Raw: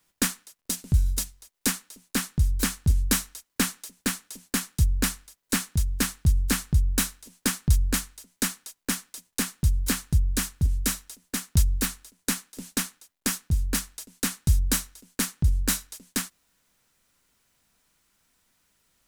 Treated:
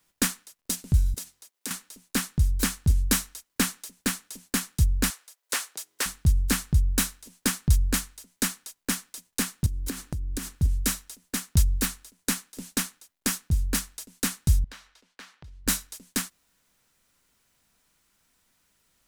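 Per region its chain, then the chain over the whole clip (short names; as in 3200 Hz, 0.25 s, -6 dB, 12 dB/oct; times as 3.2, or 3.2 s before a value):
1.14–1.71 HPF 210 Hz + compressor 3:1, threshold -34 dBFS
5.1–6.06 HPF 450 Hz 24 dB/oct + Doppler distortion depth 0.17 ms
9.66–10.56 bell 310 Hz +10.5 dB 0.99 oct + compressor 12:1, threshold -27 dBFS
14.64–15.67 three-band isolator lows -16 dB, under 500 Hz, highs -22 dB, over 4700 Hz + compressor 2.5:1, threshold -47 dBFS
whole clip: dry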